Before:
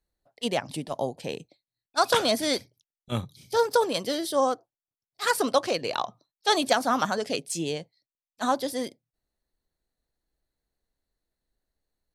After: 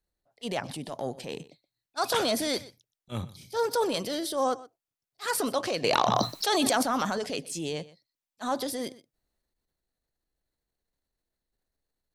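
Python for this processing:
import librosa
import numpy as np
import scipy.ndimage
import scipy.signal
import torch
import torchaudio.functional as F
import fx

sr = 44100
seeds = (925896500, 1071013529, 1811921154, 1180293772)

y = fx.transient(x, sr, attack_db=-6, sustain_db=5)
y = y + 10.0 ** (-19.0 / 20.0) * np.pad(y, (int(123 * sr / 1000.0), 0))[:len(y)]
y = fx.env_flatten(y, sr, amount_pct=100, at=(5.84, 6.83))
y = y * 10.0 ** (-2.5 / 20.0)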